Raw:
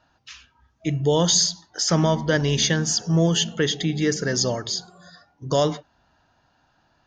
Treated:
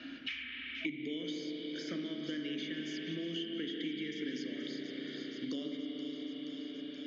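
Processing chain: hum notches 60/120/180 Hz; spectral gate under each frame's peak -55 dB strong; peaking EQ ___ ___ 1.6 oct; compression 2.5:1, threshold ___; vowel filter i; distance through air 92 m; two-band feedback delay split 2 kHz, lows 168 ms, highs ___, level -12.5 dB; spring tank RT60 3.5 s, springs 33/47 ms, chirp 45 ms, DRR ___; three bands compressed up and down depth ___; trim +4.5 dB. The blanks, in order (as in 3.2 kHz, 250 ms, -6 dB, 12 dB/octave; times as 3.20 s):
120 Hz, -12.5 dB, -31 dBFS, 476 ms, 0.5 dB, 100%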